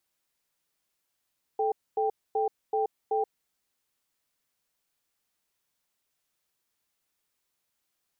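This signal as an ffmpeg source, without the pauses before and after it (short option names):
-f lavfi -i "aevalsrc='0.0473*(sin(2*PI*435*t)+sin(2*PI*788*t))*clip(min(mod(t,0.38),0.13-mod(t,0.38))/0.005,0,1)':d=1.88:s=44100"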